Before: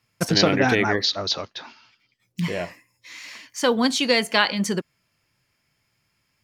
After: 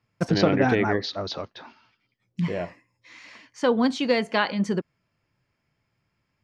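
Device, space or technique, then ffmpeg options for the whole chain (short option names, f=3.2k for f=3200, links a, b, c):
through cloth: -af "lowpass=6.9k,highshelf=f=2k:g=-12"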